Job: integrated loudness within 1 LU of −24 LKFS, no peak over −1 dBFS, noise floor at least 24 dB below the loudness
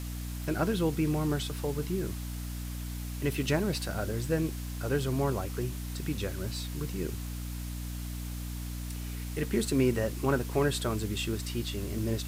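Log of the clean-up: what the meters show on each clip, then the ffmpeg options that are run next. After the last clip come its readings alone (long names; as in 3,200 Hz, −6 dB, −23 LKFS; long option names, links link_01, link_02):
mains hum 60 Hz; hum harmonics up to 300 Hz; level of the hum −35 dBFS; background noise floor −37 dBFS; target noise floor −57 dBFS; integrated loudness −32.5 LKFS; sample peak −13.5 dBFS; target loudness −24.0 LKFS
→ -af "bandreject=frequency=60:width_type=h:width=6,bandreject=frequency=120:width_type=h:width=6,bandreject=frequency=180:width_type=h:width=6,bandreject=frequency=240:width_type=h:width=6,bandreject=frequency=300:width_type=h:width=6"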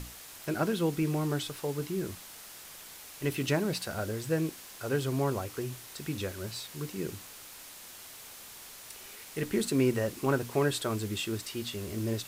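mains hum none found; background noise floor −48 dBFS; target noise floor −57 dBFS
→ -af "afftdn=noise_reduction=9:noise_floor=-48"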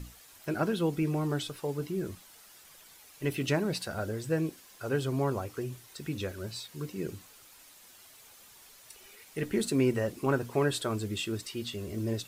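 background noise floor −55 dBFS; target noise floor −57 dBFS
→ -af "afftdn=noise_reduction=6:noise_floor=-55"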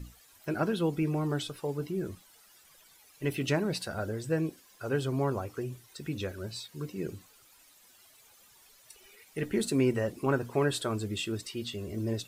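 background noise floor −60 dBFS; integrated loudness −32.5 LKFS; sample peak −13.5 dBFS; target loudness −24.0 LKFS
→ -af "volume=8.5dB"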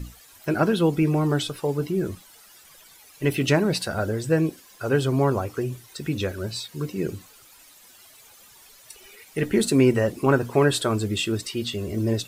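integrated loudness −24.0 LKFS; sample peak −5.0 dBFS; background noise floor −51 dBFS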